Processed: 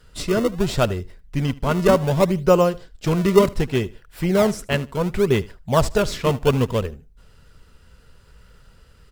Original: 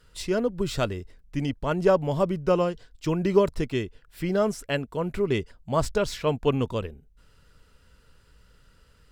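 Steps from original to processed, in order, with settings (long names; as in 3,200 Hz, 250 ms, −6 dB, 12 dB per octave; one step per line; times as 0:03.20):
parametric band 300 Hz −8 dB 0.27 octaves
in parallel at −7 dB: sample-and-hold swept by an LFO 31×, swing 160% 0.68 Hz
on the sum: repeating echo 76 ms, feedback 23%, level −21 dB
level +4.5 dB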